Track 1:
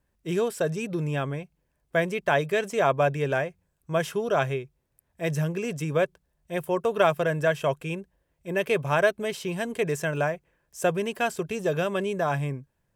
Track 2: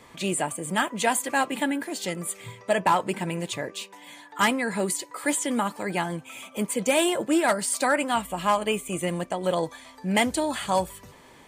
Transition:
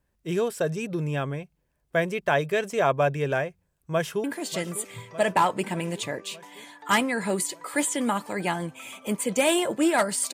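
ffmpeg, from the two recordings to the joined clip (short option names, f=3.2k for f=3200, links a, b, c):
-filter_complex "[0:a]apad=whole_dur=10.33,atrim=end=10.33,atrim=end=4.242[a];[1:a]atrim=start=1.738:end=7.83[b];[a][b]acrossfade=d=0.004:c1=hsin:c2=hsin,asplit=2[c][d];[d]afade=t=in:st=3.92:d=0.01,afade=t=out:st=4.24:d=0.01,aecho=0:1:600|1200|1800|2400|3000|3600|4200|4800:0.223872|0.145517|0.094586|0.0614809|0.0399626|0.0259757|0.0168842|0.0109747[e];[c][e]amix=inputs=2:normalize=0"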